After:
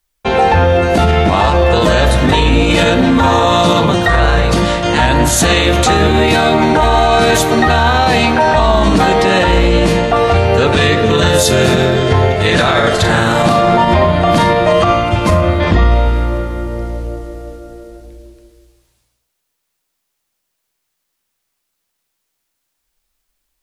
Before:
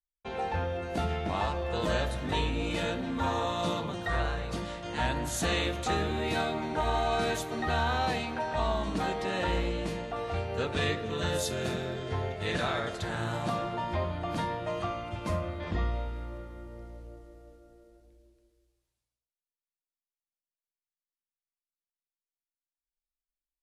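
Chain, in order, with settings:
0:12.75–0:14.83: double-tracking delay 39 ms −5.5 dB
boost into a limiter +25 dB
level −1 dB

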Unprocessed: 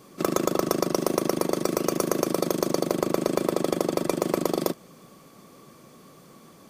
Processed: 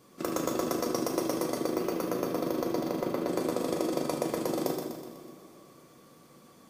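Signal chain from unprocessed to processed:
0:01.60–0:03.28: parametric band 7,900 Hz −11 dB 1.3 octaves
echo with a time of its own for lows and highs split 390 Hz, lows 197 ms, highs 124 ms, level −5.5 dB
on a send at −2 dB: convolution reverb, pre-delay 3 ms
on the sum: level −8.5 dB

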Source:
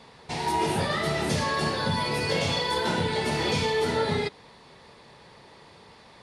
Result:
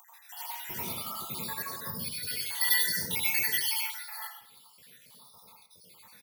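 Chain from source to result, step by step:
time-frequency cells dropped at random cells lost 79%
high-pass filter 79 Hz
guitar amp tone stack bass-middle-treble 5-5-5
single-tap delay 193 ms −23 dB
upward compression, threshold −55 dBFS
0:02.61–0:03.79: high shelf with overshoot 1,600 Hz +8 dB, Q 3
bad sample-rate conversion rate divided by 3×, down none, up zero stuff
dense smooth reverb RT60 0.58 s, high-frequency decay 0.5×, pre-delay 75 ms, DRR −5.5 dB
Ogg Vorbis 192 kbit/s 48,000 Hz

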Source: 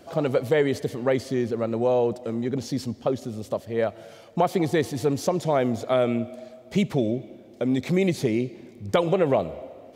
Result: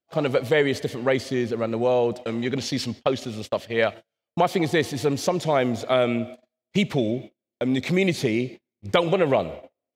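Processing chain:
noise gate −35 dBFS, range −42 dB
parametric band 2,800 Hz +7 dB 2.1 octaves, from 0:02.18 +14.5 dB, from 0:03.94 +7 dB

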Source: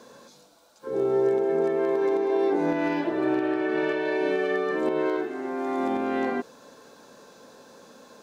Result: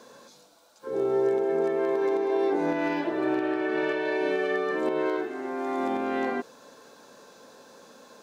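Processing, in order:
low-shelf EQ 280 Hz −5 dB

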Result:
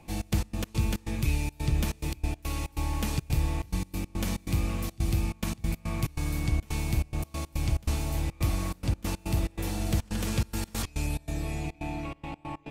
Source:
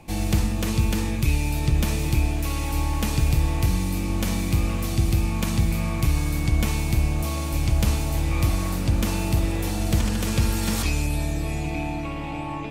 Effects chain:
gate pattern "xx.x.x.xx.xxxx.x" 141 BPM −24 dB
level −5.5 dB

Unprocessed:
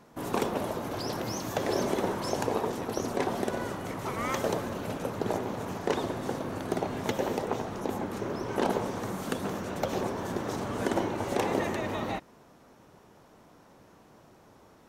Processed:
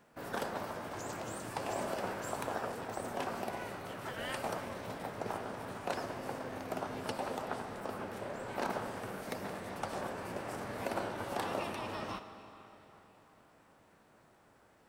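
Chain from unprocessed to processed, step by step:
comb and all-pass reverb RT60 3.7 s, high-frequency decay 0.75×, pre-delay 20 ms, DRR 10 dB
formants moved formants +6 semitones
level −8.5 dB

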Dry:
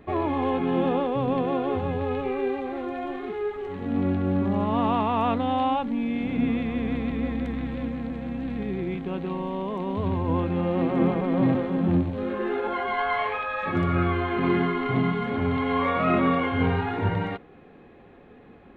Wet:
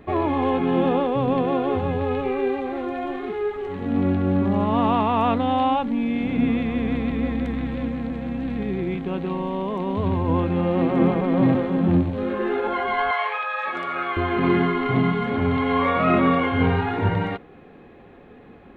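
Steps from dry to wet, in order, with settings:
0:13.11–0:14.17: high-pass filter 670 Hz 12 dB per octave
level +3.5 dB

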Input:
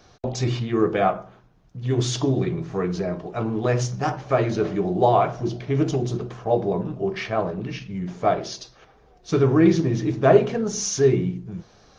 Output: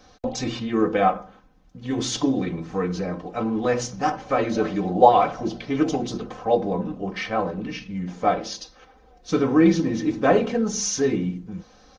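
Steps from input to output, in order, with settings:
comb filter 3.9 ms, depth 74%
0:04.55–0:06.57: auto-filter bell 2.2 Hz 550–5,300 Hz +8 dB
level −1 dB

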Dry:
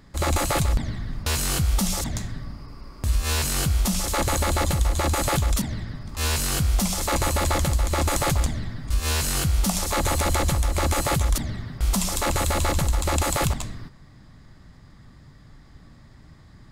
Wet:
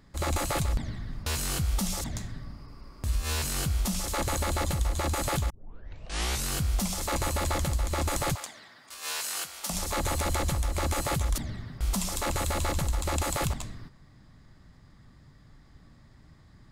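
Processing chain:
0:05.50: tape start 0.97 s
0:08.35–0:09.70: high-pass filter 700 Hz 12 dB per octave
level −6 dB

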